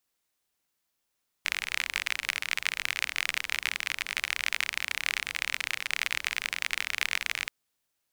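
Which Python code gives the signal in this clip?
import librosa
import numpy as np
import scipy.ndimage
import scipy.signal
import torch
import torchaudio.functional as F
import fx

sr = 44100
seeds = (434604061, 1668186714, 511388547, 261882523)

y = fx.rain(sr, seeds[0], length_s=6.03, drops_per_s=39.0, hz=2200.0, bed_db=-22.5)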